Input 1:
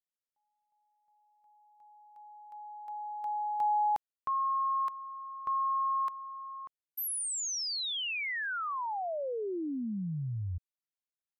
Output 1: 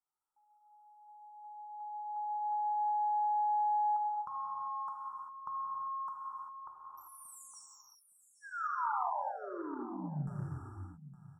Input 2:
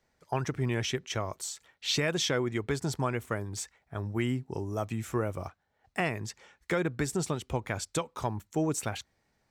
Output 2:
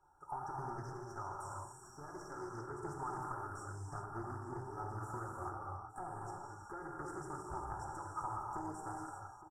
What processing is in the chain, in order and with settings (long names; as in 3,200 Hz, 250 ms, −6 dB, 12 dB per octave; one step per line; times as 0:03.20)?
loose part that buzzes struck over −32 dBFS, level −23 dBFS
bass and treble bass −13 dB, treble +6 dB
comb filter 2.3 ms, depth 100%
downward compressor 8 to 1, threshold −41 dBFS
soft clipping −39.5 dBFS
linear-phase brick-wall band-stop 1,700–5,400 Hz
high-frequency loss of the air 100 metres
phaser with its sweep stopped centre 1,800 Hz, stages 6
single-tap delay 864 ms −14.5 dB
reverb whose tail is shaped and stops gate 420 ms flat, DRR −3 dB
highs frequency-modulated by the lows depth 0.19 ms
level +8 dB